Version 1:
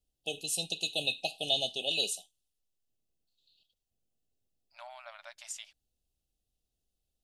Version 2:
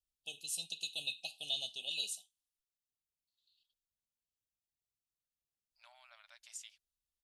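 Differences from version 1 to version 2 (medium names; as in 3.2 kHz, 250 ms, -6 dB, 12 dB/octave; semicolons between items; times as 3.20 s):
second voice: entry +1.05 s; master: add amplifier tone stack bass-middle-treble 5-5-5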